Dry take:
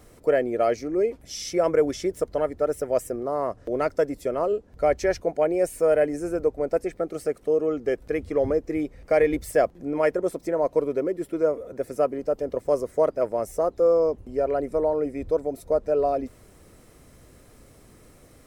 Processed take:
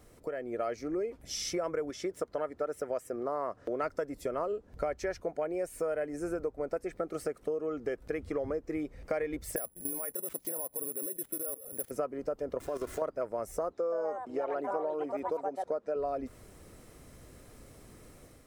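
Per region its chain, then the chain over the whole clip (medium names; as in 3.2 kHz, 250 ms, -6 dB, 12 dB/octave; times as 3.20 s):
1.90–3.84 s: high-pass 200 Hz 6 dB/octave + treble shelf 8.5 kHz -6 dB
9.56–11.91 s: level held to a coarse grid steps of 16 dB + careless resampling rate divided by 4×, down none, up zero stuff
12.60–13.02 s: jump at every zero crossing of -35.5 dBFS + comb 2.9 ms, depth 43% + level held to a coarse grid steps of 14 dB
13.73–15.96 s: band-pass 210–7300 Hz + ever faster or slower copies 137 ms, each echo +4 st, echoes 2, each echo -6 dB
whole clip: compression 6:1, threshold -30 dBFS; dynamic bell 1.3 kHz, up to +6 dB, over -52 dBFS, Q 1.6; level rider gain up to 5 dB; trim -6.5 dB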